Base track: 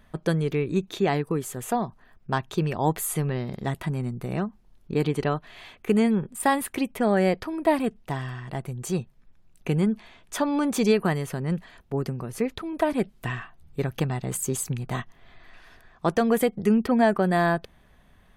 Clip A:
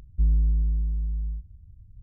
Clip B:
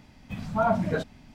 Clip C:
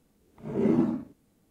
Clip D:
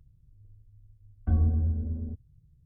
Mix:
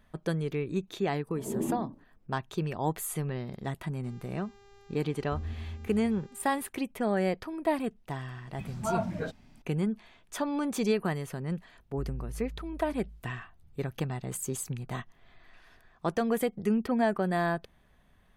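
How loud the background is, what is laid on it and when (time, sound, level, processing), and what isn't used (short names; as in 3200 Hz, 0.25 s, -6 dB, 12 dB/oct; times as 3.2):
base track -6.5 dB
0.91 add C -8 dB + brick-wall FIR low-pass 1200 Hz
4.04 add D -13 dB + buzz 400 Hz, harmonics 19, -45 dBFS -6 dB/oct
8.28 add B -7 dB
11.79 add A -17.5 dB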